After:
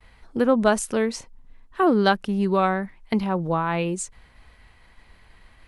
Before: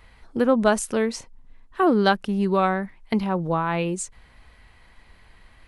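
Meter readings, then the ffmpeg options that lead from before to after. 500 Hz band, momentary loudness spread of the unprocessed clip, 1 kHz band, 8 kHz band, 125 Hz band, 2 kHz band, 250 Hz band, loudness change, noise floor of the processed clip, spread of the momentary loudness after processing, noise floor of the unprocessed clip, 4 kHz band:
0.0 dB, 13 LU, 0.0 dB, 0.0 dB, 0.0 dB, 0.0 dB, 0.0 dB, 0.0 dB, −54 dBFS, 13 LU, −53 dBFS, 0.0 dB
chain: -af "agate=range=-33dB:threshold=-50dB:ratio=3:detection=peak"

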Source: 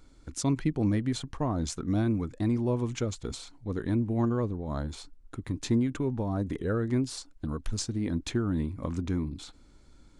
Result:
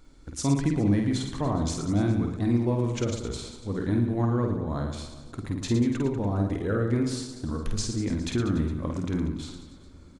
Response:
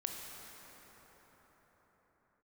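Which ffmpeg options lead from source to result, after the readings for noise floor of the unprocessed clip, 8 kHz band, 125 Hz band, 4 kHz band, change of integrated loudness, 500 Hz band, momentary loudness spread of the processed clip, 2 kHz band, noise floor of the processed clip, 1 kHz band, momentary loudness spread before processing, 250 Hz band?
−56 dBFS, +2.5 dB, +3.5 dB, +3.0 dB, +3.0 dB, +3.0 dB, 10 LU, +3.5 dB, −49 dBFS, +3.5 dB, 11 LU, +3.0 dB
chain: -filter_complex "[0:a]aecho=1:1:50|112.5|190.6|288.3|410.4:0.631|0.398|0.251|0.158|0.1,asplit=2[link_01][link_02];[1:a]atrim=start_sample=2205,lowpass=7900[link_03];[link_02][link_03]afir=irnorm=-1:irlink=0,volume=-16dB[link_04];[link_01][link_04]amix=inputs=2:normalize=0"

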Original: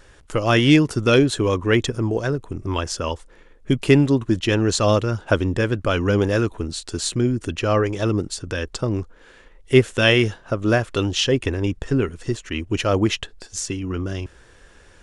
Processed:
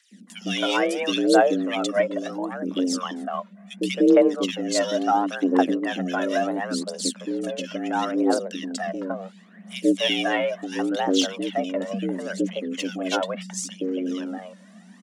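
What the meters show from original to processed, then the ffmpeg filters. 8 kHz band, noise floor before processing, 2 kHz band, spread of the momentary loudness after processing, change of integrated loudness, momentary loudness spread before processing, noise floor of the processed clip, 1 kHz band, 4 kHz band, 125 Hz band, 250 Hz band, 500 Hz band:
−2.5 dB, −50 dBFS, −5.0 dB, 12 LU, −3.5 dB, 12 LU, −49 dBFS, +2.0 dB, −3.0 dB, below −15 dB, −2.5 dB, −2.5 dB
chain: -filter_complex "[0:a]acrossover=split=320|2000[link_01][link_02][link_03];[link_01]adelay=110[link_04];[link_02]adelay=270[link_05];[link_04][link_05][link_03]amix=inputs=3:normalize=0,aphaser=in_gain=1:out_gain=1:delay=2.6:decay=0.64:speed=0.72:type=triangular,afreqshift=180,volume=-5dB"

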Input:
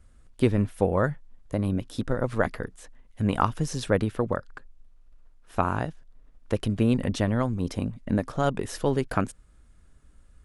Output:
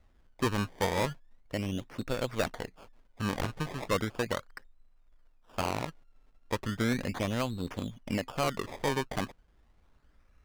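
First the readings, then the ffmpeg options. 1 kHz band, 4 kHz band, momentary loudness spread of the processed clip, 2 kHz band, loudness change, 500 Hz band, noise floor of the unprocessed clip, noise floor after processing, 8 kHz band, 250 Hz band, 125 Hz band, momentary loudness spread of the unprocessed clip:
−5.0 dB, +2.0 dB, 9 LU, −1.5 dB, −6.0 dB, −6.0 dB, −55 dBFS, −64 dBFS, −1.0 dB, −7.5 dB, −8.5 dB, 8 LU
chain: -filter_complex "[0:a]acrusher=samples=22:mix=1:aa=0.000001:lfo=1:lforange=22:lforate=0.36,asplit=2[link_01][link_02];[link_02]highpass=frequency=720:poles=1,volume=4dB,asoftclip=type=tanh:threshold=-7dB[link_03];[link_01][link_03]amix=inputs=2:normalize=0,lowpass=frequency=3900:poles=1,volume=-6dB,aeval=exprs='0.15*(abs(mod(val(0)/0.15+3,4)-2)-1)':channel_layout=same,volume=-3dB"

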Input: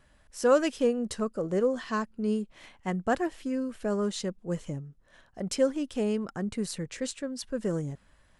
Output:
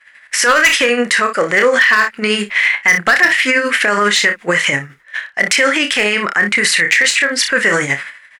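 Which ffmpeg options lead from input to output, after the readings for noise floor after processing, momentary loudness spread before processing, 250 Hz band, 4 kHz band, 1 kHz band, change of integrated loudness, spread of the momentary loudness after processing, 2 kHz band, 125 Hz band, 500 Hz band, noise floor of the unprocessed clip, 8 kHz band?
−46 dBFS, 12 LU, +7.0 dB, +26.0 dB, +17.5 dB, +18.0 dB, 7 LU, +32.0 dB, +6.0 dB, +10.5 dB, −63 dBFS, +21.5 dB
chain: -filter_complex "[0:a]aemphasis=mode=production:type=75kf,agate=range=-33dB:threshold=-47dB:ratio=3:detection=peak,bandpass=frequency=1900:width_type=q:width=1.3:csg=0,asplit=2[link_01][link_02];[link_02]acompressor=threshold=-45dB:ratio=10,volume=-1.5dB[link_03];[link_01][link_03]amix=inputs=2:normalize=0,equalizer=frequency=2000:width=2:gain=14,tremolo=f=12:d=0.6,asoftclip=type=hard:threshold=-25.5dB,asplit=2[link_04][link_05];[link_05]aecho=0:1:29|59:0.355|0.141[link_06];[link_04][link_06]amix=inputs=2:normalize=0,alimiter=level_in=33dB:limit=-1dB:release=50:level=0:latency=1,volume=-3dB"

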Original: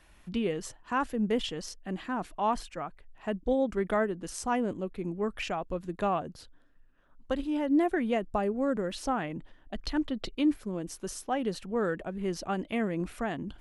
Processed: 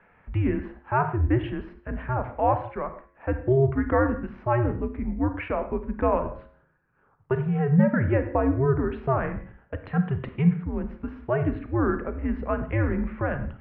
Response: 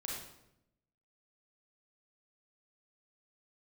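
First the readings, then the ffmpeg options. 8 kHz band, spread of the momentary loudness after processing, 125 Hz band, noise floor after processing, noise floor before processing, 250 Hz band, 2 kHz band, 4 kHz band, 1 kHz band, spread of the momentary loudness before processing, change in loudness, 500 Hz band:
below −35 dB, 12 LU, +16.5 dB, −62 dBFS, −59 dBFS, +4.0 dB, +4.5 dB, below −10 dB, +4.0 dB, 10 LU, +5.5 dB, +5.0 dB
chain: -filter_complex "[0:a]bandreject=frequency=95.92:width_type=h:width=4,bandreject=frequency=191.84:width_type=h:width=4,bandreject=frequency=287.76:width_type=h:width=4,bandreject=frequency=383.68:width_type=h:width=4,bandreject=frequency=479.6:width_type=h:width=4,bandreject=frequency=575.52:width_type=h:width=4,bandreject=frequency=671.44:width_type=h:width=4,bandreject=frequency=767.36:width_type=h:width=4,bandreject=frequency=863.28:width_type=h:width=4,bandreject=frequency=959.2:width_type=h:width=4,bandreject=frequency=1055.12:width_type=h:width=4,bandreject=frequency=1151.04:width_type=h:width=4,bandreject=frequency=1246.96:width_type=h:width=4,bandreject=frequency=1342.88:width_type=h:width=4,bandreject=frequency=1438.8:width_type=h:width=4,bandreject=frequency=1534.72:width_type=h:width=4,bandreject=frequency=1630.64:width_type=h:width=4,bandreject=frequency=1726.56:width_type=h:width=4,bandreject=frequency=1822.48:width_type=h:width=4,bandreject=frequency=1918.4:width_type=h:width=4,bandreject=frequency=2014.32:width_type=h:width=4,bandreject=frequency=2110.24:width_type=h:width=4,bandreject=frequency=2206.16:width_type=h:width=4,bandreject=frequency=2302.08:width_type=h:width=4,bandreject=frequency=2398:width_type=h:width=4,bandreject=frequency=2493.92:width_type=h:width=4,bandreject=frequency=2589.84:width_type=h:width=4,bandreject=frequency=2685.76:width_type=h:width=4,asplit=2[link_01][link_02];[1:a]atrim=start_sample=2205,afade=type=out:start_time=0.24:duration=0.01,atrim=end_sample=11025[link_03];[link_02][link_03]afir=irnorm=-1:irlink=0,volume=-6dB[link_04];[link_01][link_04]amix=inputs=2:normalize=0,highpass=frequency=150:width_type=q:width=0.5412,highpass=frequency=150:width_type=q:width=1.307,lowpass=frequency=2300:width_type=q:width=0.5176,lowpass=frequency=2300:width_type=q:width=0.7071,lowpass=frequency=2300:width_type=q:width=1.932,afreqshift=-130,volume=4dB"

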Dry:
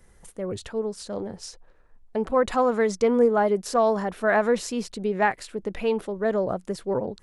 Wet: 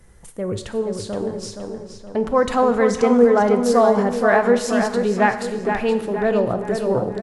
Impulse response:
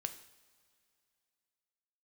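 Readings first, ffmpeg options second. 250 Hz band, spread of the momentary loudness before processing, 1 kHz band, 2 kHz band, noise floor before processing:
+7.5 dB, 13 LU, +5.5 dB, +5.5 dB, −55 dBFS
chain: -filter_complex "[0:a]equalizer=frequency=110:width_type=o:width=1.8:gain=4.5,asplit=2[link_01][link_02];[link_02]adelay=471,lowpass=frequency=4200:poles=1,volume=-6dB,asplit=2[link_03][link_04];[link_04]adelay=471,lowpass=frequency=4200:poles=1,volume=0.48,asplit=2[link_05][link_06];[link_06]adelay=471,lowpass=frequency=4200:poles=1,volume=0.48,asplit=2[link_07][link_08];[link_08]adelay=471,lowpass=frequency=4200:poles=1,volume=0.48,asplit=2[link_09][link_10];[link_10]adelay=471,lowpass=frequency=4200:poles=1,volume=0.48,asplit=2[link_11][link_12];[link_12]adelay=471,lowpass=frequency=4200:poles=1,volume=0.48[link_13];[link_01][link_03][link_05][link_07][link_09][link_11][link_13]amix=inputs=7:normalize=0,asplit=2[link_14][link_15];[1:a]atrim=start_sample=2205,asetrate=30429,aresample=44100[link_16];[link_15][link_16]afir=irnorm=-1:irlink=0,volume=8dB[link_17];[link_14][link_17]amix=inputs=2:normalize=0,volume=-7dB"

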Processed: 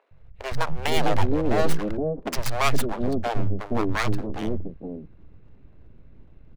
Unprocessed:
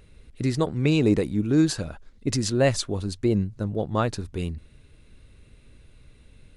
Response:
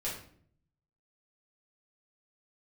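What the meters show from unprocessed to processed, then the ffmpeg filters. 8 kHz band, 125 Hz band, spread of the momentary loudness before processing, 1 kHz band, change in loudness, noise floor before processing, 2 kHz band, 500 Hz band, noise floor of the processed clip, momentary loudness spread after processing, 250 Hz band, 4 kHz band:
−3.5 dB, −3.5 dB, 11 LU, +7.0 dB, −2.0 dB, −53 dBFS, +4.5 dB, −0.5 dB, −49 dBFS, 11 LU, −4.5 dB, +0.5 dB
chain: -filter_complex "[0:a]adynamicsmooth=sensitivity=5:basefreq=1000,aeval=exprs='abs(val(0))':channel_layout=same,acrossover=split=160|530[link_01][link_02][link_03];[link_01]adelay=110[link_04];[link_02]adelay=470[link_05];[link_04][link_05][link_03]amix=inputs=3:normalize=0,volume=5dB"

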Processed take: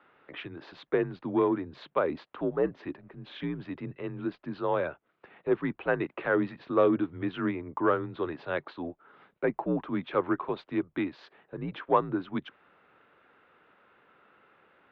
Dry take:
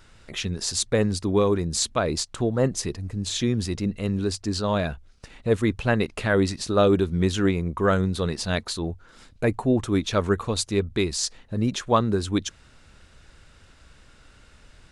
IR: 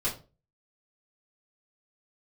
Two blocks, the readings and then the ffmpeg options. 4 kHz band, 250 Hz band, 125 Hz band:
−18.5 dB, −6.5 dB, −14.5 dB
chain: -filter_complex "[0:a]acontrast=82,highpass=frequency=190:width_type=q:width=0.5412,highpass=frequency=190:width_type=q:width=1.307,lowpass=frequency=3500:width_type=q:width=0.5176,lowpass=frequency=3500:width_type=q:width=0.7071,lowpass=frequency=3500:width_type=q:width=1.932,afreqshift=-73,acrossover=split=280 2000:gain=0.224 1 0.2[link_01][link_02][link_03];[link_01][link_02][link_03]amix=inputs=3:normalize=0,volume=-8dB"

